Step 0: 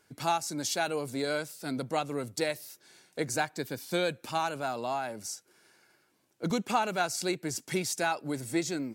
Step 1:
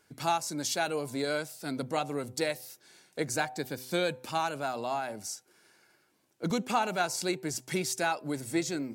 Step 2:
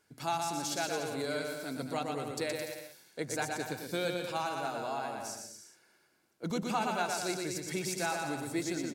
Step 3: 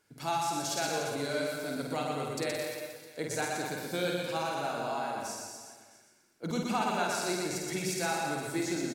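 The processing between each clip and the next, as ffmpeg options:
-af "bandreject=f=127:t=h:w=4,bandreject=f=254:t=h:w=4,bandreject=f=381:t=h:w=4,bandreject=f=508:t=h:w=4,bandreject=f=635:t=h:w=4,bandreject=f=762:t=h:w=4,bandreject=f=889:t=h:w=4,bandreject=f=1.016k:t=h:w=4"
-af "aecho=1:1:120|216|292.8|354.2|403.4:0.631|0.398|0.251|0.158|0.1,volume=-5dB"
-af "aecho=1:1:50|125|237.5|406.2|659.4:0.631|0.398|0.251|0.158|0.1"

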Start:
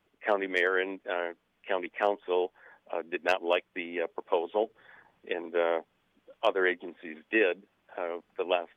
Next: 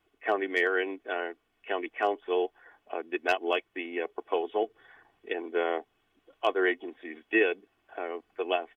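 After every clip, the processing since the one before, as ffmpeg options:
-af "aecho=1:1:2.7:0.6,volume=-1.5dB"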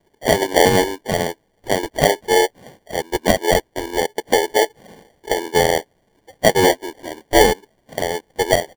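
-af "equalizer=f=125:t=o:w=1:g=4,equalizer=f=250:t=o:w=1:g=-5,equalizer=f=500:t=o:w=1:g=7,equalizer=f=2k:t=o:w=1:g=8,equalizer=f=4k:t=o:w=1:g=-10,acrusher=samples=34:mix=1:aa=0.000001,volume=8dB"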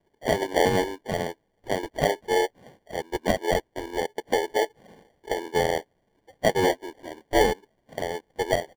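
-af "highshelf=f=4.5k:g=-7.5,volume=-7.5dB"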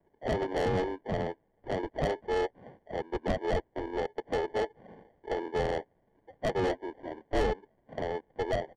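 -filter_complex "[0:a]lowpass=1.7k,acrossover=split=110[a][b];[b]asoftclip=type=tanh:threshold=-25dB[c];[a][c]amix=inputs=2:normalize=0"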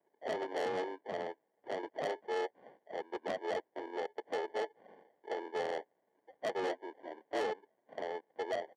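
-af "highpass=380,volume=-4.5dB"

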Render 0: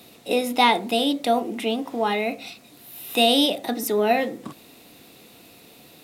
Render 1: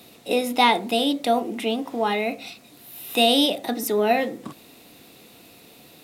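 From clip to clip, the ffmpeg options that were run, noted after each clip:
-af anull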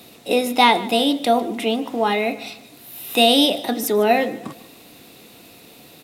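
-af "aecho=1:1:151|302|453:0.119|0.0452|0.0172,volume=3.5dB"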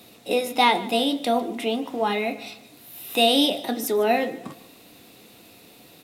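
-af "flanger=delay=9.4:depth=2.7:regen=-64:speed=0.37:shape=sinusoidal"

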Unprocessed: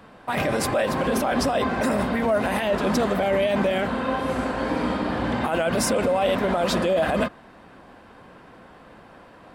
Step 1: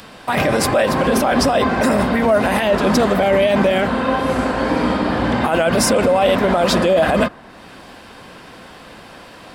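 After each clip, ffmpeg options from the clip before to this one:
-filter_complex "[0:a]equalizer=f=5k:t=o:w=0.28:g=2.5,acrossover=split=2600[a][b];[b]acompressor=mode=upward:threshold=-43dB:ratio=2.5[c];[a][c]amix=inputs=2:normalize=0,volume=7dB"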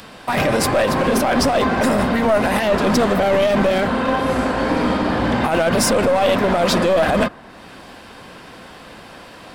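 -af "aeval=exprs='clip(val(0),-1,0.188)':c=same"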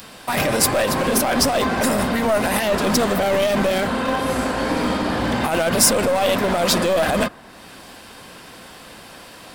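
-af "crystalizer=i=2:c=0,volume=-3dB"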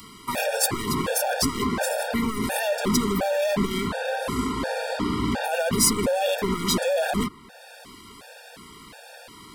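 -filter_complex "[0:a]acrossover=split=390|3000[a][b][c];[b]acompressor=threshold=-21dB:ratio=6[d];[a][d][c]amix=inputs=3:normalize=0,afftfilt=real='re*gt(sin(2*PI*1.4*pts/sr)*(1-2*mod(floor(b*sr/1024/470),2)),0)':imag='im*gt(sin(2*PI*1.4*pts/sr)*(1-2*mod(floor(b*sr/1024/470),2)),0)':win_size=1024:overlap=0.75,volume=-1.5dB"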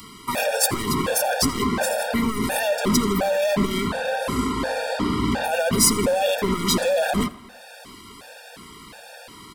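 -af "aecho=1:1:83|166|249|332:0.0944|0.0463|0.0227|0.0111,volume=2.5dB"

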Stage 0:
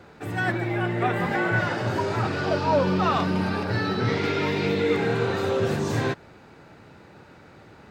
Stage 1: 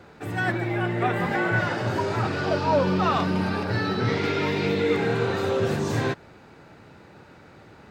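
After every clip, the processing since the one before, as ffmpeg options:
-af anull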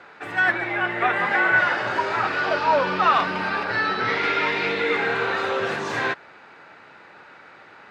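-af "bandpass=f=1.7k:t=q:w=0.89:csg=0,volume=8.5dB"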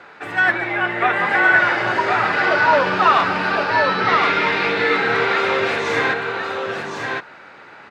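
-af "aecho=1:1:1064:0.631,volume=3.5dB"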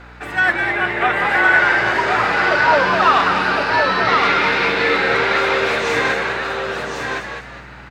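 -filter_complex "[0:a]crystalizer=i=1:c=0,aeval=exprs='val(0)+0.00891*(sin(2*PI*60*n/s)+sin(2*PI*2*60*n/s)/2+sin(2*PI*3*60*n/s)/3+sin(2*PI*4*60*n/s)/4+sin(2*PI*5*60*n/s)/5)':c=same,asplit=5[a][b][c][d][e];[b]adelay=204,afreqshift=77,volume=-6dB[f];[c]adelay=408,afreqshift=154,volume=-14.6dB[g];[d]adelay=612,afreqshift=231,volume=-23.3dB[h];[e]adelay=816,afreqshift=308,volume=-31.9dB[i];[a][f][g][h][i]amix=inputs=5:normalize=0"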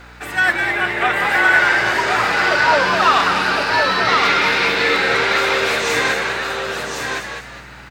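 -af "crystalizer=i=2.5:c=0,volume=-1.5dB"

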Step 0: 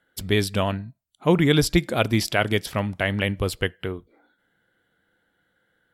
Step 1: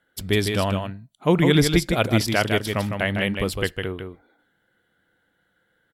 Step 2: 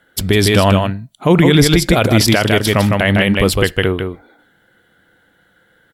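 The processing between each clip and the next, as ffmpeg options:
-af "aecho=1:1:155:0.531"
-af "alimiter=level_in=14dB:limit=-1dB:release=50:level=0:latency=1,volume=-1dB"

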